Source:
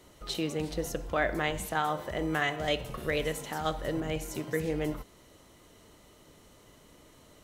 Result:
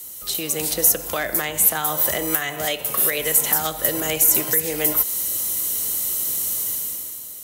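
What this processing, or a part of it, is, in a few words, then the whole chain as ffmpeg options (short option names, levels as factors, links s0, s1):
FM broadcast chain: -filter_complex "[0:a]highpass=50,dynaudnorm=f=120:g=11:m=4.47,acrossover=split=98|380|2500[s0][s1][s2][s3];[s0]acompressor=threshold=0.00447:ratio=4[s4];[s1]acompressor=threshold=0.0178:ratio=4[s5];[s2]acompressor=threshold=0.0631:ratio=4[s6];[s3]acompressor=threshold=0.00562:ratio=4[s7];[s4][s5][s6][s7]amix=inputs=4:normalize=0,aemphasis=mode=production:type=75fm,alimiter=limit=0.178:level=0:latency=1:release=396,asoftclip=type=hard:threshold=0.133,lowpass=f=15000:w=0.5412,lowpass=f=15000:w=1.3066,aemphasis=mode=production:type=75fm,asettb=1/sr,asplit=3[s8][s9][s10];[s8]atrim=end=2.654[s11];[s9]atrim=start=2.65:end=3.18,asetpts=PTS-STARTPTS,afade=t=in:d=0.004:c=qsin,afade=t=out:st=0.526:d=0.004:c=qsin,highpass=f=200:p=1[s12];[s10]atrim=start=3.176[s13];[s11][s12]acrossfade=d=0.004:c1=hsin:c2=qsin[s14];[s14][s13]acrossfade=d=0.004:c1=qsin:c2=hsin,volume=1.19"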